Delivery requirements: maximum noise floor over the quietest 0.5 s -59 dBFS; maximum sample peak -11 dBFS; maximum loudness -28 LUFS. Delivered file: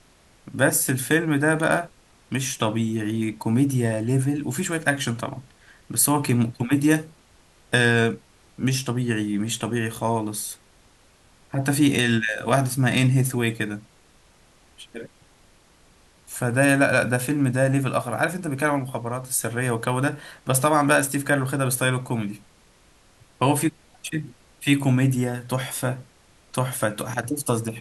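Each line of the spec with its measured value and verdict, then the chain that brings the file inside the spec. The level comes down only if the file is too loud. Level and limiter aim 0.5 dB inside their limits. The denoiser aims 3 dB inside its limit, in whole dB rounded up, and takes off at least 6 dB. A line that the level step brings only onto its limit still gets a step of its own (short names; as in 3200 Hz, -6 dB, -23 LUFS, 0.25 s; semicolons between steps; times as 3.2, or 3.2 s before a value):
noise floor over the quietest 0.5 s -56 dBFS: fail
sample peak -5.0 dBFS: fail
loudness -23.0 LUFS: fail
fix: gain -5.5 dB; limiter -11.5 dBFS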